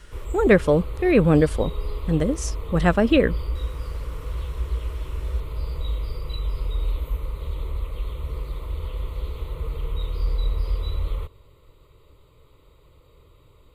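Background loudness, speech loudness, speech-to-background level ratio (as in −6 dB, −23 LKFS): −31.0 LKFS, −21.0 LKFS, 10.0 dB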